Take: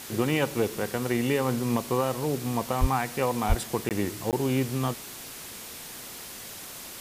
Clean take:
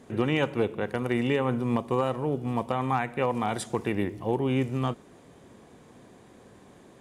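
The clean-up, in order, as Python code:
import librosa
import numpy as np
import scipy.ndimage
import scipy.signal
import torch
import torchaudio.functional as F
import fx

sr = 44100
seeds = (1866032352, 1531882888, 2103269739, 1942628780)

y = fx.highpass(x, sr, hz=140.0, slope=24, at=(2.8, 2.92), fade=0.02)
y = fx.highpass(y, sr, hz=140.0, slope=24, at=(3.48, 3.6), fade=0.02)
y = fx.fix_interpolate(y, sr, at_s=(3.89, 4.31), length_ms=18.0)
y = fx.noise_reduce(y, sr, print_start_s=6.48, print_end_s=6.98, reduce_db=12.0)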